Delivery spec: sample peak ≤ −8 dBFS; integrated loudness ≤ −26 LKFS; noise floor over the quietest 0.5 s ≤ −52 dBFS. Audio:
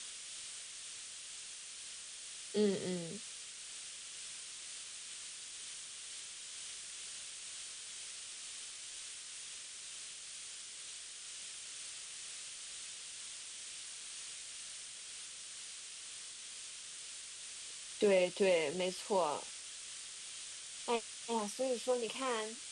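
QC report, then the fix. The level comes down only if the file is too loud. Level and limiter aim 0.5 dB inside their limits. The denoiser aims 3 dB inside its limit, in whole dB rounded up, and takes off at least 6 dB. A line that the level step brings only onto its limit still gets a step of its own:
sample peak −20.0 dBFS: in spec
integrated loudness −41.0 LKFS: in spec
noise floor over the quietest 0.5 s −49 dBFS: out of spec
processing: broadband denoise 6 dB, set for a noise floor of −49 dBFS

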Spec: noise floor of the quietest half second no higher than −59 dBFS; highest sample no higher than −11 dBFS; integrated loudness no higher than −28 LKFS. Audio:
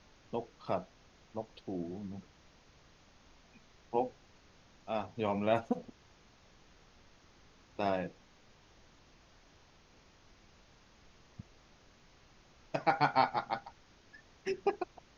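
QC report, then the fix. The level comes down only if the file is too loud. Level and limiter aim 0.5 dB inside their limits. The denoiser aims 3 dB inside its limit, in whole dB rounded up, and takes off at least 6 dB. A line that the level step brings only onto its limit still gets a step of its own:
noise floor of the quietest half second −63 dBFS: in spec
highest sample −13.5 dBFS: in spec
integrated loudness −36.0 LKFS: in spec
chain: no processing needed

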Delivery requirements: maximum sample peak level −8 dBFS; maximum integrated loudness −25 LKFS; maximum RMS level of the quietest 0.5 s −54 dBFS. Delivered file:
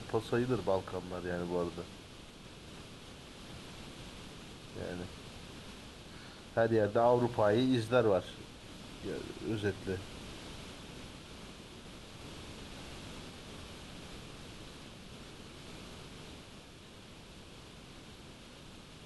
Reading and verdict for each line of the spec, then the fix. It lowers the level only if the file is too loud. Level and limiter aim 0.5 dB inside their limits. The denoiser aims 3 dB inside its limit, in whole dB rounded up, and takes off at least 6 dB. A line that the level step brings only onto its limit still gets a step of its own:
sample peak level −16.5 dBFS: in spec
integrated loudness −35.5 LKFS: in spec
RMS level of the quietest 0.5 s −53 dBFS: out of spec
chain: broadband denoise 6 dB, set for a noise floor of −53 dBFS

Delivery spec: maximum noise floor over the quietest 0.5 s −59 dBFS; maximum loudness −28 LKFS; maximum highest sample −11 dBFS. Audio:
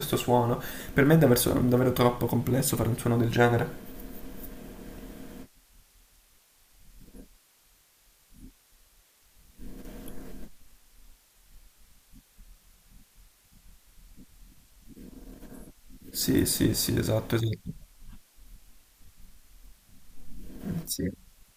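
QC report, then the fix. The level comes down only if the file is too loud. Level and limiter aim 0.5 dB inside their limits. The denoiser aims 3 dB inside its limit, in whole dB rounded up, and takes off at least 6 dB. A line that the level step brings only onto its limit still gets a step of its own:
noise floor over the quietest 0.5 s −63 dBFS: in spec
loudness −26.0 LKFS: out of spec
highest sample −7.5 dBFS: out of spec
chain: level −2.5 dB
brickwall limiter −11.5 dBFS

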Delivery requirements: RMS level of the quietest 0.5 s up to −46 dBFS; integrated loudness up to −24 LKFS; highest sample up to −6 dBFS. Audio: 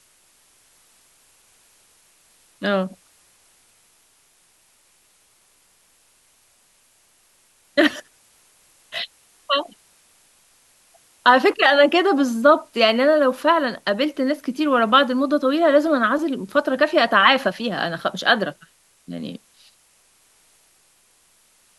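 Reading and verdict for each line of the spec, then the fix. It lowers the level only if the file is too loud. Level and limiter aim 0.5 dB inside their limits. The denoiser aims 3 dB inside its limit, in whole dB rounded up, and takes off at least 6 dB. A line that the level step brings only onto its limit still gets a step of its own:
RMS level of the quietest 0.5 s −59 dBFS: in spec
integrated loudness −18.5 LKFS: out of spec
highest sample −1.5 dBFS: out of spec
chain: level −6 dB

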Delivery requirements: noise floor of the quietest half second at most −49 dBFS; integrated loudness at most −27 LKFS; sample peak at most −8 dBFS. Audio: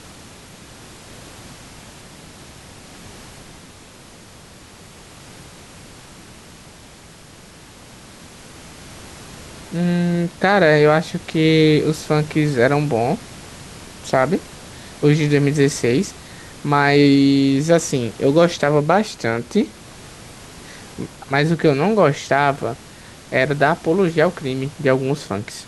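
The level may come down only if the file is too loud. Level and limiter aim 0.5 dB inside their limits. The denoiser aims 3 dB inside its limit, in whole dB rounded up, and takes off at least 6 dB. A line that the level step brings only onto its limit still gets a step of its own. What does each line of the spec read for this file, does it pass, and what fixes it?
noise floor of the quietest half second −43 dBFS: out of spec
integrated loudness −17.5 LKFS: out of spec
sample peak −2.0 dBFS: out of spec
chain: level −10 dB

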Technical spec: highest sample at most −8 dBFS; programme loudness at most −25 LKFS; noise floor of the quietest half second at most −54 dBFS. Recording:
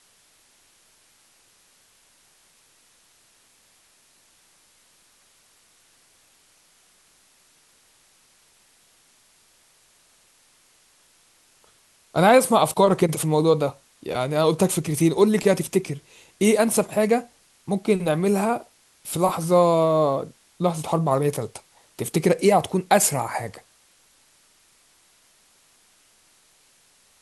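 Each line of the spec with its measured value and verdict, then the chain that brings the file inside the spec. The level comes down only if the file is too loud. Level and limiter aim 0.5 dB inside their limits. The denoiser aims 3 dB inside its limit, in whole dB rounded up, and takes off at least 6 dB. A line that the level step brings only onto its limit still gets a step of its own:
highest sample −5.0 dBFS: out of spec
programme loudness −21.0 LKFS: out of spec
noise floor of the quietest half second −59 dBFS: in spec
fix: level −4.5 dB

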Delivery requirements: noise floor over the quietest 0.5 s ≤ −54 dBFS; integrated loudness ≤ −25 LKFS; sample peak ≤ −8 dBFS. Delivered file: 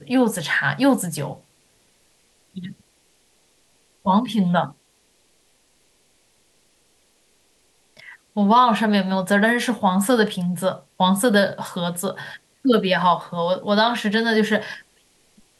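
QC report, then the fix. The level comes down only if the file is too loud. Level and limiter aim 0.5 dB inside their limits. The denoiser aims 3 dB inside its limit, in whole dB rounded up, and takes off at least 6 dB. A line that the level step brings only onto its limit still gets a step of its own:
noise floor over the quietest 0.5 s −62 dBFS: in spec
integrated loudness −20.0 LKFS: out of spec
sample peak −5.5 dBFS: out of spec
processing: level −5.5 dB

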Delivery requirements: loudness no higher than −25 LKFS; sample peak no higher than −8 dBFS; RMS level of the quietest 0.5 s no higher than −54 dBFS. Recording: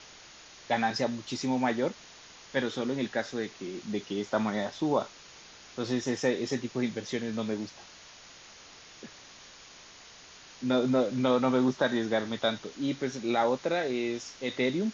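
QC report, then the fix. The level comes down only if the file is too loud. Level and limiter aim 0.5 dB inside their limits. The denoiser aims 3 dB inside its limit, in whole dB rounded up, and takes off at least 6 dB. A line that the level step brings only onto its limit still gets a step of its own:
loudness −30.5 LKFS: in spec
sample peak −13.5 dBFS: in spec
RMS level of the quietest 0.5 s −51 dBFS: out of spec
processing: broadband denoise 6 dB, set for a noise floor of −51 dBFS

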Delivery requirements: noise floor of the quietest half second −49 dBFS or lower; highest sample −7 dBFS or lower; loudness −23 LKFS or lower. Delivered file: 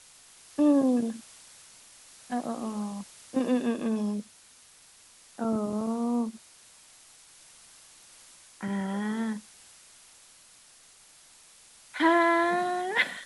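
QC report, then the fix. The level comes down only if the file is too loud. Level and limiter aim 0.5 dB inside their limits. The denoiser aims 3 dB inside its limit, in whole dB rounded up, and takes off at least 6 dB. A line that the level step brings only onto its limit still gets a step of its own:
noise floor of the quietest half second −56 dBFS: in spec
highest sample −10.5 dBFS: in spec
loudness −28.5 LKFS: in spec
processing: no processing needed

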